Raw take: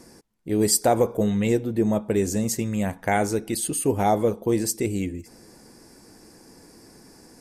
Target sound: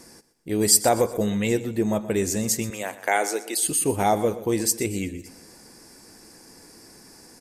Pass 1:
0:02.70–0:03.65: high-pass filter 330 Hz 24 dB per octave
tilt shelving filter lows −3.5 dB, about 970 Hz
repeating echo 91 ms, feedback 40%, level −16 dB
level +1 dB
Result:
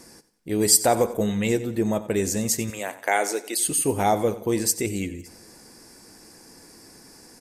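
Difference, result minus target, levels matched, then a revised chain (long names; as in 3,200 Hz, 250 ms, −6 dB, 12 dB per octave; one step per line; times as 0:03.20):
echo 32 ms early
0:02.70–0:03.65: high-pass filter 330 Hz 24 dB per octave
tilt shelving filter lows −3.5 dB, about 970 Hz
repeating echo 123 ms, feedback 40%, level −16 dB
level +1 dB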